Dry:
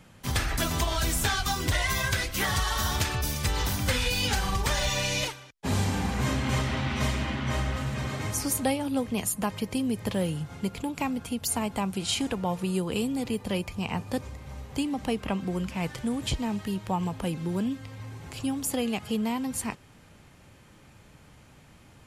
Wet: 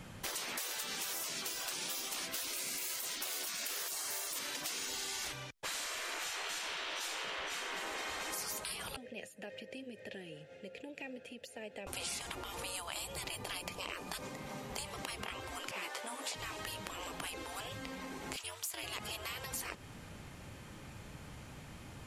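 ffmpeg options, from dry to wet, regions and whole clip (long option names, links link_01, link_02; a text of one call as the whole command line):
ffmpeg -i in.wav -filter_complex "[0:a]asettb=1/sr,asplit=3[link_01][link_02][link_03];[link_01]atrim=end=2.534[link_04];[link_02]atrim=start=2.53:end=4.39,asetpts=PTS-STARTPTS,afade=type=in:duration=0.004:curve=qsin,afade=type=out:start_time=1.856:duration=0.004:curve=qsin,equalizer=frequency=340:width=4.4:gain=-9.5,acontrast=43,aeval=exprs='sgn(val(0))*max(abs(val(0))-0.00708,0)':channel_layout=same[link_05];[link_03]atrim=start=4.386[link_06];[link_04][link_05]acrossfade=duration=0.004:curve1=hsin:curve2=qsin[link_07];[link_07][link_06]acrossfade=duration=0.004:curve1=qsin:curve2=hsin,asettb=1/sr,asplit=3[link_08][link_09][link_10];[link_08]atrim=end=8.964[link_11];[link_09]atrim=start=8.96:end=11.87,asetpts=PTS-STARTPTS,afade=type=in:duration=0.004:curve=qsin,afade=type=out:start_time=2.906:duration=0.004:curve=qsin,bass=frequency=250:gain=0,treble=frequency=4000:gain=7,acompressor=threshold=-28dB:ratio=2.5:attack=3.2:release=140:knee=1:detection=peak,asplit=3[link_12][link_13][link_14];[link_12]bandpass=frequency=530:width_type=q:width=8,volume=0dB[link_15];[link_13]bandpass=frequency=1840:width_type=q:width=8,volume=-6dB[link_16];[link_14]bandpass=frequency=2480:width_type=q:width=8,volume=-9dB[link_17];[link_15][link_16][link_17]amix=inputs=3:normalize=0[link_18];[link_10]atrim=start=11.866[link_19];[link_11][link_18]acrossfade=duration=0.004:curve1=hsin:curve2=qsin[link_20];[link_20][link_19]acrossfade=duration=0.004:curve1=qsin:curve2=hsin,asettb=1/sr,asplit=3[link_21][link_22][link_23];[link_21]atrim=end=15.714[link_24];[link_22]atrim=start=15.71:end=16.33,asetpts=PTS-STARTPTS,afade=type=in:duration=0.004:curve=qsin,afade=type=out:start_time=0.616:duration=0.004:curve=qsin,highpass=frequency=520:width=0.5412,highpass=frequency=520:width=1.3066,tiltshelf=frequency=680:gain=4.5,asplit=2[link_25][link_26];[link_26]adelay=15,volume=-3dB[link_27];[link_25][link_27]amix=inputs=2:normalize=0,atrim=end_sample=27342[link_28];[link_23]atrim=start=16.326[link_29];[link_24][link_28]acrossfade=duration=0.004:curve1=hsin:curve2=qsin[link_30];[link_30][link_29]acrossfade=duration=0.004:curve1=qsin:curve2=hsin,asettb=1/sr,asplit=3[link_31][link_32][link_33];[link_31]atrim=end=18.364[link_34];[link_32]atrim=start=18.36:end=18.84,asetpts=PTS-STARTPTS,afade=type=in:duration=0.004:curve=qsin,afade=type=out:start_time=0.476:duration=0.004:curve=qsin,highpass=1300,volume=26dB,asoftclip=hard,volume=-26dB,aeval=exprs='val(0)*sin(2*PI*180*n/s)':channel_layout=same[link_35];[link_33]atrim=start=18.836[link_36];[link_34][link_35]acrossfade=duration=0.004:curve1=hsin:curve2=qsin[link_37];[link_37][link_36]acrossfade=duration=0.004:curve1=qsin:curve2=hsin,afftfilt=real='re*lt(hypot(re,im),0.0447)':imag='im*lt(hypot(re,im),0.0447)':win_size=1024:overlap=0.75,acompressor=threshold=-41dB:ratio=5,volume=3.5dB" out.wav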